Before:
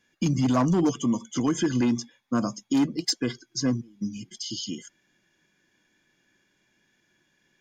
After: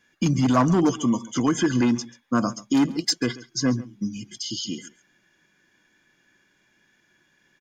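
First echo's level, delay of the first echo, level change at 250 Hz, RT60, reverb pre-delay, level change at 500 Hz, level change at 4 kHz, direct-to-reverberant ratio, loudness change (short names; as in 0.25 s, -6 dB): -19.5 dB, 0.137 s, +2.5 dB, none, none, +3.0 dB, +3.0 dB, none, +3.0 dB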